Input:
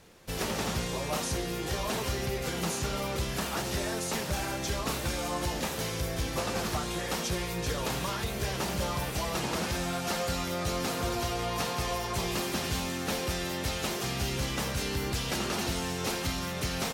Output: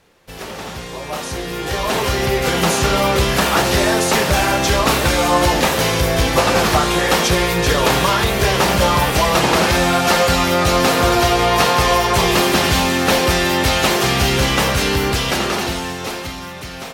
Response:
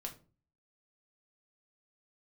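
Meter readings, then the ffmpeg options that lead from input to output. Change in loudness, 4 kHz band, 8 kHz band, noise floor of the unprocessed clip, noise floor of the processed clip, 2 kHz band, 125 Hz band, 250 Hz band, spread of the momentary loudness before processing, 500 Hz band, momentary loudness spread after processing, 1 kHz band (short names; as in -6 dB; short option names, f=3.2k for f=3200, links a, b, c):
+16.0 dB, +15.5 dB, +13.0 dB, -35 dBFS, -31 dBFS, +17.5 dB, +13.5 dB, +14.5 dB, 2 LU, +16.5 dB, 11 LU, +18.0 dB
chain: -filter_complex "[0:a]dynaudnorm=f=340:g=11:m=16dB,asplit=2[a][b];[b]highpass=330,lowpass=4.9k[c];[1:a]atrim=start_sample=2205,asetrate=27342,aresample=44100[d];[c][d]afir=irnorm=-1:irlink=0,volume=-3.5dB[e];[a][e]amix=inputs=2:normalize=0,volume=-1dB"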